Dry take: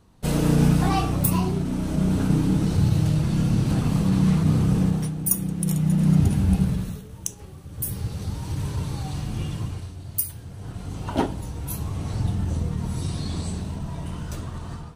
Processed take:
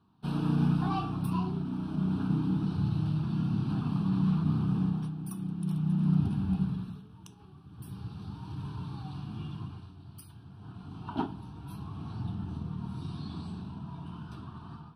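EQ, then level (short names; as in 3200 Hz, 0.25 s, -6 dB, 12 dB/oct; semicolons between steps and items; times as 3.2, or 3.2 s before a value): BPF 150–7800 Hz; high shelf 2400 Hz -10 dB; fixed phaser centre 2000 Hz, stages 6; -4.0 dB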